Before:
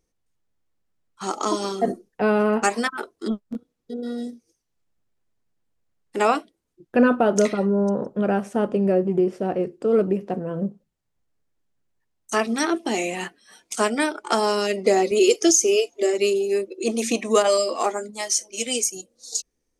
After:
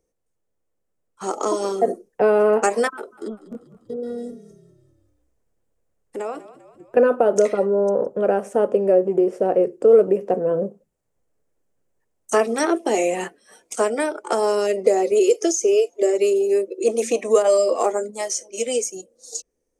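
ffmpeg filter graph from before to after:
-filter_complex "[0:a]asettb=1/sr,asplit=3[a][b][c];[a]atrim=end=2.914[d];[b]atrim=start=2.91:end=6.97,asetpts=PTS-STARTPTS,afade=t=in:d=0.004:c=qsin,afade=t=out:st=4.056:d=0.004:c=qsin,acompressor=threshold=-38dB:ratio=2.5:attack=3.2:release=140:knee=1:detection=peak,asplit=6[e][f][g][h][i][j];[f]adelay=197,afreqshift=-36,volume=-15dB[k];[g]adelay=394,afreqshift=-72,volume=-20.2dB[l];[h]adelay=591,afreqshift=-108,volume=-25.4dB[m];[i]adelay=788,afreqshift=-144,volume=-30.6dB[n];[j]adelay=985,afreqshift=-180,volume=-35.8dB[o];[e][k][l][m][n][o]amix=inputs=6:normalize=0,atrim=end_sample=179046[p];[c]atrim=start=6.966[q];[d][p]acrossfade=d=0.004:c1=hsin:c2=qsin[r];[r][q]acrossfade=d=0.004:c1=qsin:c2=hsin,acrossover=split=340|6800[s][t][u];[s]acompressor=threshold=-35dB:ratio=4[v];[t]acompressor=threshold=-20dB:ratio=4[w];[u]acompressor=threshold=-38dB:ratio=4[x];[v][w][x]amix=inputs=3:normalize=0,equalizer=f=500:t=o:w=1:g=11,equalizer=f=4k:t=o:w=1:g=-7,equalizer=f=8k:t=o:w=1:g=5,dynaudnorm=f=460:g=9:m=11.5dB,volume=-3dB"

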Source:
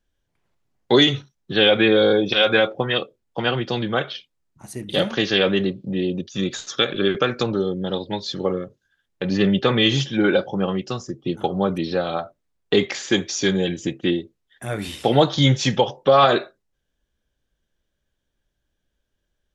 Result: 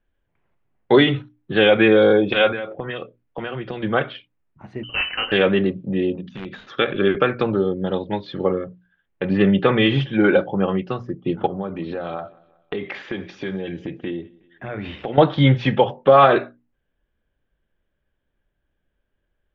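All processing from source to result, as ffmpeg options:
-filter_complex "[0:a]asettb=1/sr,asplit=3[a][b][c];[a]atrim=end=2.514[d];[b]atrim=start=2.51:end=3.83,asetpts=PTS-STARTPTS,afade=t=in:d=0.004:c=qsin,afade=t=out:st=1.316:d=0.004:c=qsin,equalizer=f=840:w=7.1:g=-4,acompressor=threshold=-26dB:ratio=6:attack=3.2:release=140:knee=1:detection=peak[e];[c]atrim=start=3.826[f];[d][e]acrossfade=d=0.004:c1=hsin:c2=qsin[g];[g][f]acrossfade=d=0.004:c1=qsin:c2=hsin,asettb=1/sr,asplit=3[h][i][j];[h]atrim=end=4.834[k];[i]atrim=start=4.83:end=5.32,asetpts=PTS-STARTPTS,afade=t=in:d=0.004:c=qsin,afade=t=out:st=0.486:d=0.004:c=qsin,asoftclip=type=hard:threshold=-17dB,lowpass=f=2.7k:t=q:w=0.5098,lowpass=f=2.7k:t=q:w=0.6013,lowpass=f=2.7k:t=q:w=0.9,lowpass=f=2.7k:t=q:w=2.563,afreqshift=-3200[l];[j]atrim=start=5.316[m];[k][l]acrossfade=d=0.004:c1=hsin:c2=qsin[n];[n][m]acrossfade=d=0.004:c1=qsin:c2=hsin,asettb=1/sr,asplit=3[o][p][q];[o]atrim=end=6.154[r];[p]atrim=start=6.15:end=6.67,asetpts=PTS-STARTPTS,afade=t=in:d=0.004:c=qsin,afade=t=out:st=0.516:d=0.004:c=qsin,bandreject=f=50:t=h:w=6,bandreject=f=100:t=h:w=6,bandreject=f=150:t=h:w=6,bandreject=f=200:t=h:w=6,bandreject=f=250:t=h:w=6,bandreject=f=300:t=h:w=6,acompressor=threshold=-30dB:ratio=5:attack=3.2:release=140:knee=1:detection=peak,aeval=exprs='(mod(15.8*val(0)+1,2)-1)/15.8':c=same[s];[q]atrim=start=6.666[t];[r][s]acrossfade=d=0.004:c1=hsin:c2=qsin[u];[u][t]acrossfade=d=0.004:c1=qsin:c2=hsin,asettb=1/sr,asplit=3[v][w][x];[v]atrim=end=11.464[y];[w]atrim=start=11.46:end=15.18,asetpts=PTS-STARTPTS,afade=t=in:d=0.004:c=qsin,afade=t=out:st=3.716:d=0.004:c=qsin,acompressor=threshold=-26dB:ratio=5:attack=3.2:release=140:knee=1:detection=peak,aecho=1:1:184|368|552:0.0631|0.0284|0.0128,atrim=end_sample=164052[z];[x]atrim=start=15.176[aa];[y][z]acrossfade=d=0.004:c1=hsin:c2=qsin[ab];[ab][aa]acrossfade=d=0.004:c1=qsin:c2=hsin,lowpass=f=2.7k:w=0.5412,lowpass=f=2.7k:w=1.3066,bandreject=f=60:t=h:w=6,bandreject=f=120:t=h:w=6,bandreject=f=180:t=h:w=6,bandreject=f=240:t=h:w=6,bandreject=f=300:t=h:w=6,volume=2.5dB"

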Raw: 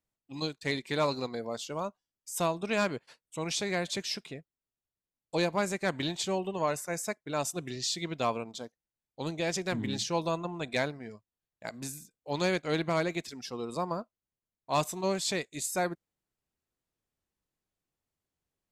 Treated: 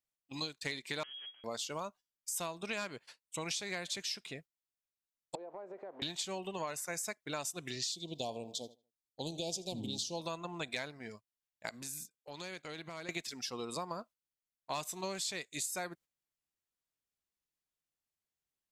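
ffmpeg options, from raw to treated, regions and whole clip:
-filter_complex "[0:a]asettb=1/sr,asplit=3[a][b][c];[a]atrim=end=1.034[d];[b]atrim=start=1.03:end=1.44,asetpts=PTS-STARTPTS,afade=t=in:d=0.004:c=qsin,afade=t=out:st=0.406:d=0.004:c=qsin,aderivative,aeval=exprs='abs(val(0))':c=same,lowpass=f=2.8k:t=q:w=0.5098,lowpass=f=2.8k:t=q:w=0.6013,lowpass=f=2.8k:t=q:w=0.9,lowpass=f=2.8k:t=q:w=2.563,afreqshift=-3300[e];[c]atrim=start=1.436[f];[d][e]acrossfade=d=0.004:c1=hsin:c2=qsin[g];[g][f]acrossfade=d=0.004:c1=qsin:c2=hsin,asettb=1/sr,asplit=3[h][i][j];[h]atrim=end=5.354[k];[i]atrim=start=5.35:end=6.02,asetpts=PTS-STARTPTS,afade=t=in:d=0.004:c=qsin,afade=t=out:st=0.666:d=0.004:c=qsin,aeval=exprs='val(0)+0.5*0.0126*sgn(val(0))':c=same,asuperpass=centerf=550:order=4:qfactor=1.2,acompressor=threshold=-40dB:ratio=16:attack=3.2:release=140:knee=1:detection=peak[l];[j]atrim=start=6.016[m];[k][l]acrossfade=d=0.004:c1=hsin:c2=qsin[n];[n][m]acrossfade=d=0.004:c1=qsin:c2=hsin,asettb=1/sr,asplit=3[o][p][q];[o]atrim=end=7.924[r];[p]atrim=start=7.92:end=10.21,asetpts=PTS-STARTPTS,afade=t=in:d=0.004:c=qsin,afade=t=out:st=2.286:d=0.004:c=qsin,asuperstop=centerf=1600:order=8:qfactor=0.73,asplit=2[s][t];[t]adelay=78,lowpass=f=4k:p=1,volume=-18dB,asplit=2[u][v];[v]adelay=78,lowpass=f=4k:p=1,volume=0.41,asplit=2[w][x];[x]adelay=78,lowpass=f=4k:p=1,volume=0.41[y];[s][u][w][y]amix=inputs=4:normalize=0,atrim=end_sample=100989[z];[q]atrim=start=10.206[aa];[r][z]acrossfade=d=0.004:c1=hsin:c2=qsin[ab];[ab][aa]acrossfade=d=0.004:c1=qsin:c2=hsin,asettb=1/sr,asplit=3[ac][ad][ae];[ac]atrim=end=11.694[af];[ad]atrim=start=11.69:end=13.09,asetpts=PTS-STARTPTS,afade=t=in:d=0.004:c=qsin,afade=t=out:st=1.396:d=0.004:c=qsin,highpass=59,acompressor=threshold=-42dB:ratio=6:attack=3.2:release=140:knee=1:detection=peak[ag];[ae]atrim=start=13.086[ah];[af][ag]acrossfade=d=0.004:c1=hsin:c2=qsin[ai];[ai][ah]acrossfade=d=0.004:c1=qsin:c2=hsin,agate=range=-9dB:threshold=-50dB:ratio=16:detection=peak,tiltshelf=f=1.1k:g=-5,acompressor=threshold=-37dB:ratio=6,volume=1dB"

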